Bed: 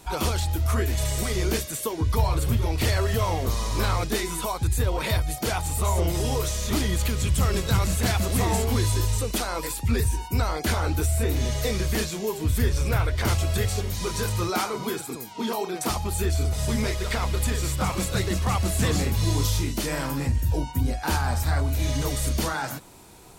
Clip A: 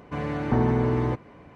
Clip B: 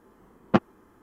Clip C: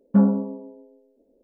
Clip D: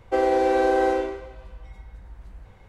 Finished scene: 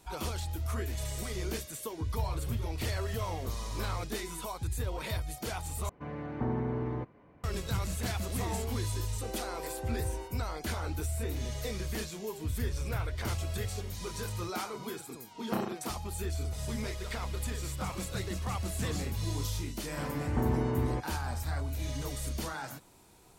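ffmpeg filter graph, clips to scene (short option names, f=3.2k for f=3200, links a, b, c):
-filter_complex "[1:a]asplit=2[a][b];[0:a]volume=-10.5dB[c];[a]lowpass=f=2.1k:p=1[d];[4:a]acompressor=threshold=-26dB:ratio=6:attack=3.2:release=140:knee=1:detection=peak[e];[2:a]aecho=1:1:30|63|99.3|139.2|183.2:0.794|0.631|0.501|0.398|0.316[f];[c]asplit=2[g][h];[g]atrim=end=5.894[i];[d]atrim=end=1.55,asetpts=PTS-STARTPTS,volume=-10dB[j];[h]atrim=start=7.436[k];[e]atrim=end=2.68,asetpts=PTS-STARTPTS,volume=-12.5dB,afade=t=in:d=0.004:c=hsin,afade=t=out:st=2.676:d=0.004:c=hsin,adelay=9110[l];[f]atrim=end=1.02,asetpts=PTS-STARTPTS,volume=-14.5dB,afade=t=in:d=0.004:c=hsin,afade=t=out:st=1.016:d=0.004:c=hsin,adelay=14980[m];[b]atrim=end=1.55,asetpts=PTS-STARTPTS,volume=-8dB,afade=t=in:d=0.004:c=hsin,afade=t=out:st=1.546:d=0.004:c=hsin,adelay=19850[n];[i][j]acrossfade=d=0.004:c1=hsin:c2=hsin[o];[o][k]acrossfade=d=0.004:c1=hsin:c2=hsin[p];[p][l][m][n]amix=inputs=4:normalize=0"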